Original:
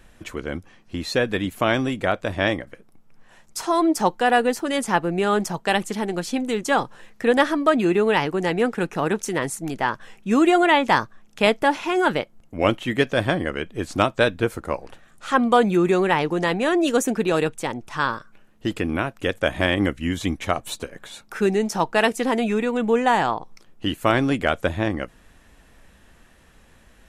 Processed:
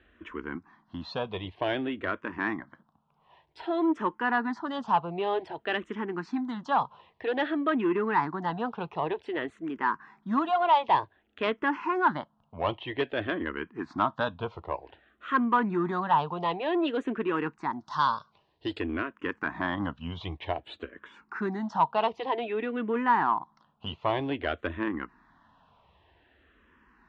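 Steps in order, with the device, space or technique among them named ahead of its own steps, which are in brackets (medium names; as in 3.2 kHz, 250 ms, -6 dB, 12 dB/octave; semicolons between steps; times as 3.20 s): barber-pole phaser into a guitar amplifier (barber-pole phaser -0.53 Hz; saturation -14.5 dBFS, distortion -17 dB; cabinet simulation 77–3400 Hz, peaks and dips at 120 Hz -7 dB, 190 Hz -5 dB, 520 Hz -7 dB, 1 kHz +9 dB, 2.3 kHz -6 dB); 17.80–18.80 s: high-order bell 6.5 kHz +16 dB; trim -3 dB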